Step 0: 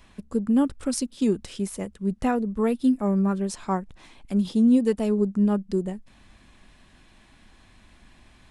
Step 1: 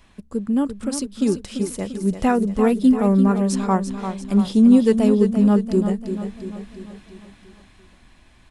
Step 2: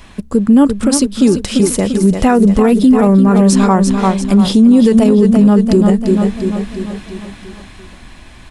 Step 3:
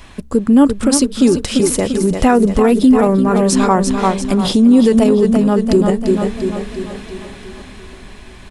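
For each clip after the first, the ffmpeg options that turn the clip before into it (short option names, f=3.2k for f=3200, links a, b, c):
-filter_complex "[0:a]dynaudnorm=f=450:g=7:m=6dB,asplit=2[a][b];[b]aecho=0:1:343|686|1029|1372|1715|2058:0.355|0.188|0.0997|0.0528|0.028|0.0148[c];[a][c]amix=inputs=2:normalize=0"
-af "alimiter=level_in=16dB:limit=-1dB:release=50:level=0:latency=1,volume=-1dB"
-filter_complex "[0:a]equalizer=f=200:w=5.6:g=-7.5,asplit=2[a][b];[b]adelay=736,lowpass=f=1.1k:p=1,volume=-21.5dB,asplit=2[c][d];[d]adelay=736,lowpass=f=1.1k:p=1,volume=0.54,asplit=2[e][f];[f]adelay=736,lowpass=f=1.1k:p=1,volume=0.54,asplit=2[g][h];[h]adelay=736,lowpass=f=1.1k:p=1,volume=0.54[i];[a][c][e][g][i]amix=inputs=5:normalize=0"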